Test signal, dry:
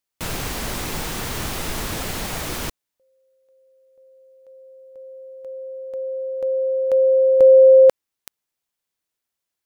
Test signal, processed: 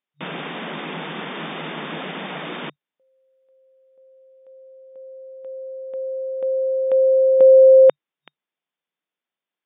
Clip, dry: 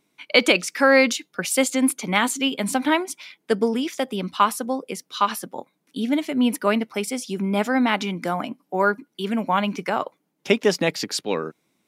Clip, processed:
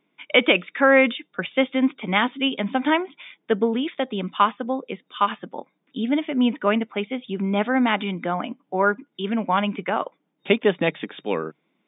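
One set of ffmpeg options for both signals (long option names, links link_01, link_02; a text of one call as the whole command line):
ffmpeg -i in.wav -af "afftfilt=real='re*between(b*sr/4096,150,3700)':imag='im*between(b*sr/4096,150,3700)':win_size=4096:overlap=0.75" out.wav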